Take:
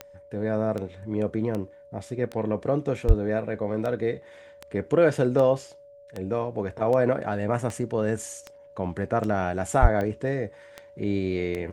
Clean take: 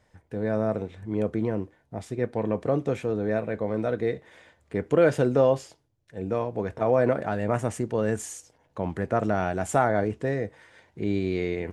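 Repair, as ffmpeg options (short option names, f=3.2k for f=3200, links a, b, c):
-filter_complex "[0:a]adeclick=t=4,bandreject=f=570:w=30,asplit=3[a][b][c];[a]afade=t=out:st=3.07:d=0.02[d];[b]highpass=f=140:w=0.5412,highpass=f=140:w=1.3066,afade=t=in:st=3.07:d=0.02,afade=t=out:st=3.19:d=0.02[e];[c]afade=t=in:st=3.19:d=0.02[f];[d][e][f]amix=inputs=3:normalize=0,asplit=3[g][h][i];[g]afade=t=out:st=9.81:d=0.02[j];[h]highpass=f=140:w=0.5412,highpass=f=140:w=1.3066,afade=t=in:st=9.81:d=0.02,afade=t=out:st=9.93:d=0.02[k];[i]afade=t=in:st=9.93:d=0.02[l];[j][k][l]amix=inputs=3:normalize=0"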